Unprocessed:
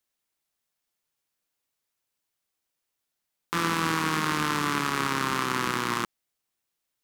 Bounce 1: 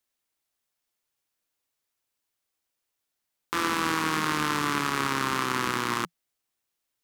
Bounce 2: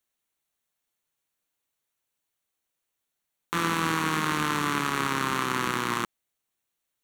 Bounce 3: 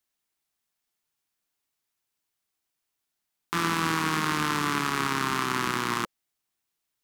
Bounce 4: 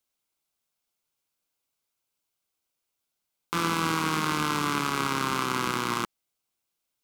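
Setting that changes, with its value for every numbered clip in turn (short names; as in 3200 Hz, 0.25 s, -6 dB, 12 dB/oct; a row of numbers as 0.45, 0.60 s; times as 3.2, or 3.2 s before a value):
notch, frequency: 170, 5000, 530, 1800 Hz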